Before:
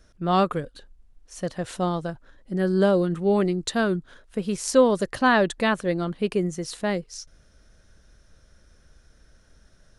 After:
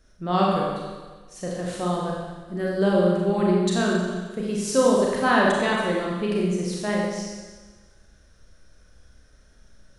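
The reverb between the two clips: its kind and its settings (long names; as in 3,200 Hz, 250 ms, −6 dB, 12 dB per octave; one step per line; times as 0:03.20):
four-comb reverb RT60 1.4 s, combs from 30 ms, DRR −3.5 dB
level −4 dB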